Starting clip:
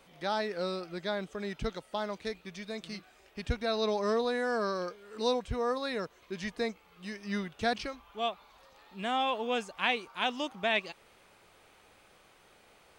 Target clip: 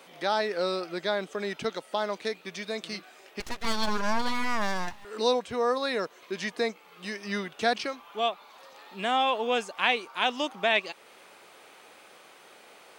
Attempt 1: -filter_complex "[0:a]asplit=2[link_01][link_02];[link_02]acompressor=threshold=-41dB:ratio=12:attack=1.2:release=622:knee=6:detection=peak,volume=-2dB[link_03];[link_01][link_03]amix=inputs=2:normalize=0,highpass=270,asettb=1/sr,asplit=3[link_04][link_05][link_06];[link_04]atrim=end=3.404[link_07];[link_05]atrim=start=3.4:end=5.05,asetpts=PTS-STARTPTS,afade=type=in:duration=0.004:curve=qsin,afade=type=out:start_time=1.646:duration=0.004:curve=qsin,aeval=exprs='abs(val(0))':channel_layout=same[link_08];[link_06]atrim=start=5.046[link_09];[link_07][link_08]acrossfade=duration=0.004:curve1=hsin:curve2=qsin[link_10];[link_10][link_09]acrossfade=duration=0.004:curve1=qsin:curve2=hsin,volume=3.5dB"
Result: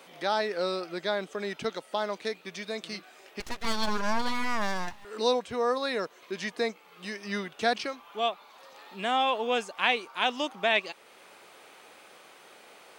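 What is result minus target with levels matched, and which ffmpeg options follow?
downward compressor: peak gain reduction +6 dB
-filter_complex "[0:a]asplit=2[link_01][link_02];[link_02]acompressor=threshold=-34.5dB:ratio=12:attack=1.2:release=622:knee=6:detection=peak,volume=-2dB[link_03];[link_01][link_03]amix=inputs=2:normalize=0,highpass=270,asettb=1/sr,asplit=3[link_04][link_05][link_06];[link_04]atrim=end=3.404[link_07];[link_05]atrim=start=3.4:end=5.05,asetpts=PTS-STARTPTS,afade=type=in:duration=0.004:curve=qsin,afade=type=out:start_time=1.646:duration=0.004:curve=qsin,aeval=exprs='abs(val(0))':channel_layout=same[link_08];[link_06]atrim=start=5.046[link_09];[link_07][link_08]acrossfade=duration=0.004:curve1=hsin:curve2=qsin[link_10];[link_10][link_09]acrossfade=duration=0.004:curve1=qsin:curve2=hsin,volume=3.5dB"

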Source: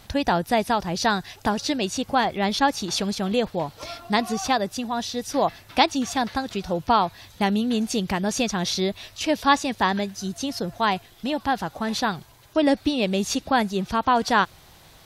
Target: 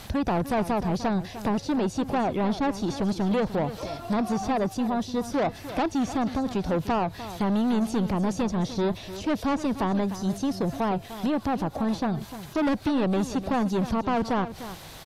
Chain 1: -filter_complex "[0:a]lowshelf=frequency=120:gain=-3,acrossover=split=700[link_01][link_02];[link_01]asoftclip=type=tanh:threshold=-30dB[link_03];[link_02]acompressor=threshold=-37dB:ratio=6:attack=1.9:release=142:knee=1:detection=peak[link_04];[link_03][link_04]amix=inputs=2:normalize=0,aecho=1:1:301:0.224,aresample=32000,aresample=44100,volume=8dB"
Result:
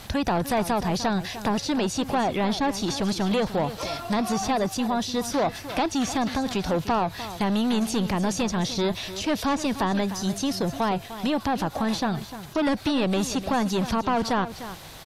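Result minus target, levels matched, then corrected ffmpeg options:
downward compressor: peak gain reduction −9.5 dB
-filter_complex "[0:a]lowshelf=frequency=120:gain=-3,acrossover=split=700[link_01][link_02];[link_01]asoftclip=type=tanh:threshold=-30dB[link_03];[link_02]acompressor=threshold=-48.5dB:ratio=6:attack=1.9:release=142:knee=1:detection=peak[link_04];[link_03][link_04]amix=inputs=2:normalize=0,aecho=1:1:301:0.224,aresample=32000,aresample=44100,volume=8dB"

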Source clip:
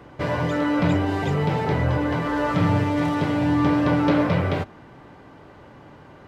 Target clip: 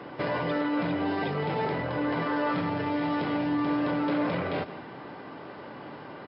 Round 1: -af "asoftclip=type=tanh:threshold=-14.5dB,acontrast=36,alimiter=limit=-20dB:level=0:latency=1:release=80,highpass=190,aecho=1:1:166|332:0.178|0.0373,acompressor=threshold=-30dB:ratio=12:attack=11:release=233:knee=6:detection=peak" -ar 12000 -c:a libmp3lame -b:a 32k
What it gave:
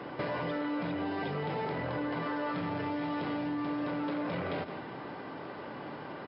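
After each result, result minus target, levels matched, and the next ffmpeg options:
downward compressor: peak gain reduction +9 dB; soft clipping: distortion +12 dB
-af "asoftclip=type=tanh:threshold=-14.5dB,acontrast=36,alimiter=limit=-20dB:level=0:latency=1:release=80,highpass=190,aecho=1:1:166|332:0.178|0.0373" -ar 12000 -c:a libmp3lame -b:a 32k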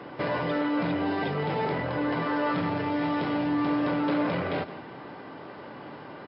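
soft clipping: distortion +12 dB
-af "asoftclip=type=tanh:threshold=-7dB,acontrast=36,alimiter=limit=-20dB:level=0:latency=1:release=80,highpass=190,aecho=1:1:166|332:0.178|0.0373" -ar 12000 -c:a libmp3lame -b:a 32k

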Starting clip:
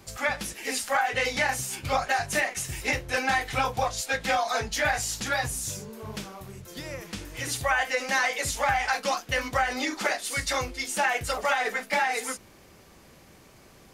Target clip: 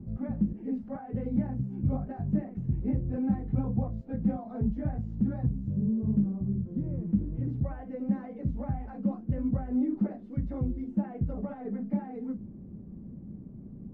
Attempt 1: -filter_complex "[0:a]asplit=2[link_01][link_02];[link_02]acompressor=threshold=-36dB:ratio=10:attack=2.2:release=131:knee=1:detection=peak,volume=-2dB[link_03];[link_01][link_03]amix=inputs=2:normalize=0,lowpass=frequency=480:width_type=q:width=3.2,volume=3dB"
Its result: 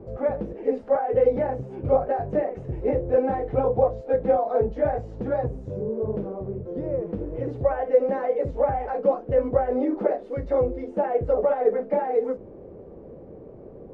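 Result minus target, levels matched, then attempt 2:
500 Hz band +14.5 dB
-filter_complex "[0:a]asplit=2[link_01][link_02];[link_02]acompressor=threshold=-36dB:ratio=10:attack=2.2:release=131:knee=1:detection=peak,volume=-2dB[link_03];[link_01][link_03]amix=inputs=2:normalize=0,lowpass=frequency=210:width_type=q:width=3.2,volume=3dB"

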